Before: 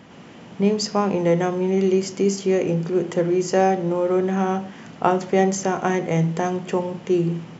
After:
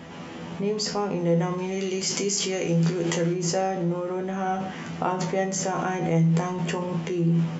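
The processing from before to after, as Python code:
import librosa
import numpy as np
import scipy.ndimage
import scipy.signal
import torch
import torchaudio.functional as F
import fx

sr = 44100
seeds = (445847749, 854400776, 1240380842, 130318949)

p1 = fx.high_shelf(x, sr, hz=2000.0, db=11.0, at=(1.58, 3.33))
p2 = fx.over_compress(p1, sr, threshold_db=-30.0, ratio=-1.0)
p3 = p1 + F.gain(torch.from_numpy(p2), 2.0).numpy()
p4 = fx.comb_fb(p3, sr, f0_hz=83.0, decay_s=0.21, harmonics='all', damping=0.0, mix_pct=90)
y = F.gain(torch.from_numpy(p4), -1.0).numpy()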